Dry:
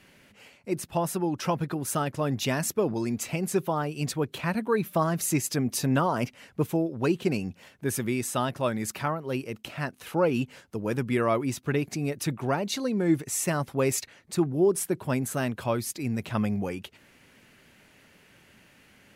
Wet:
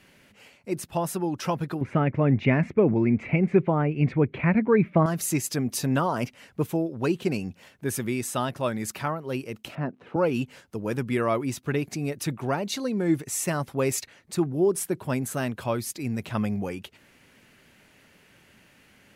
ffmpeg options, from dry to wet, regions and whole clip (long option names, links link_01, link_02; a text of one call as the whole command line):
ffmpeg -i in.wav -filter_complex "[0:a]asettb=1/sr,asplit=3[link_01][link_02][link_03];[link_01]atrim=end=1.814[link_04];[link_02]atrim=start=1.81:end=5.06,asetpts=PTS-STARTPTS,afade=type=in:duration=0.004:curve=qsin,afade=type=out:start_time=3.246:duration=0.004:curve=qsin,lowpass=frequency=2200:width_type=q:width=7,tiltshelf=frequency=820:gain=9[link_05];[link_03]atrim=start=5.056[link_06];[link_04][link_05]acrossfade=duration=0.004:curve1=hsin:curve2=qsin[link_07];[link_07][link_06]acrossfade=duration=0.004:curve1=qsin:curve2=hsin,asettb=1/sr,asplit=3[link_08][link_09][link_10];[link_08]atrim=end=9.754[link_11];[link_09]atrim=start=9.75:end=10.16,asetpts=PTS-STARTPTS,afade=type=in:duration=0.004:curve=qsin,afade=type=out:start_time=0.406:duration=0.004:curve=qsin,highpass=190,lowpass=2600,tiltshelf=frequency=770:gain=9.5[link_12];[link_10]atrim=start=10.156[link_13];[link_11][link_12]acrossfade=duration=0.004:curve1=hsin:curve2=qsin[link_14];[link_14][link_13]acrossfade=duration=0.004:curve1=qsin:curve2=hsin" out.wav